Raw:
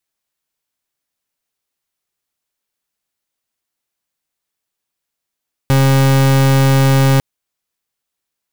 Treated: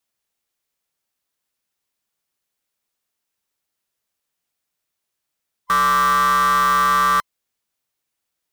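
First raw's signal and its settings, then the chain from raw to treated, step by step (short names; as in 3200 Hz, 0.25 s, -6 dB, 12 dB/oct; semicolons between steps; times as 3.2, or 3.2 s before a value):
pulse 135 Hz, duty 39% -10.5 dBFS 1.50 s
band-swap scrambler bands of 1000 Hz; limiter -9.5 dBFS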